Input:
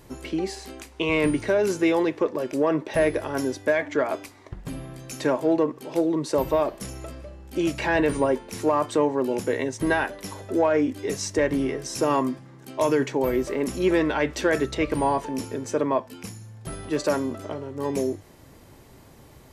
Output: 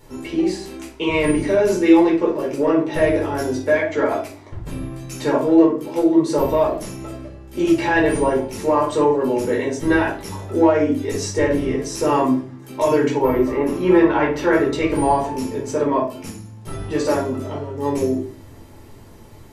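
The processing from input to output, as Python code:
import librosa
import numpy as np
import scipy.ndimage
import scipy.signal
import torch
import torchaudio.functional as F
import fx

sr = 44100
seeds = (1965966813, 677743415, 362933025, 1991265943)

y = fx.graphic_eq_10(x, sr, hz=(1000, 4000, 8000), db=(6, -4, -11), at=(13.2, 14.73))
y = fx.room_shoebox(y, sr, seeds[0], volume_m3=310.0, walls='furnished', distance_m=4.4)
y = F.gain(torch.from_numpy(y), -3.5).numpy()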